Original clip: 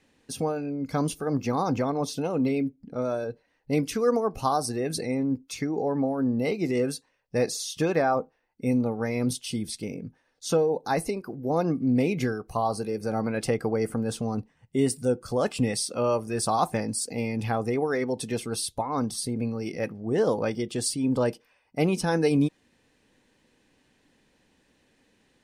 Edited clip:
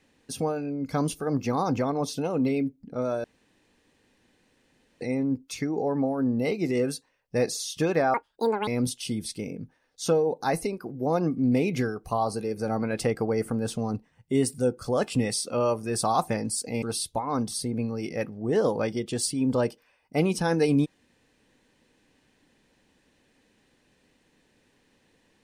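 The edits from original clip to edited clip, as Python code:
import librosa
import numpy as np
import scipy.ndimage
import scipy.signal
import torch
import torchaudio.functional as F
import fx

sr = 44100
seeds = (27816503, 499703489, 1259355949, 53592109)

y = fx.edit(x, sr, fx.room_tone_fill(start_s=3.24, length_s=1.77),
    fx.speed_span(start_s=8.14, length_s=0.97, speed=1.82),
    fx.cut(start_s=17.26, length_s=1.19), tone=tone)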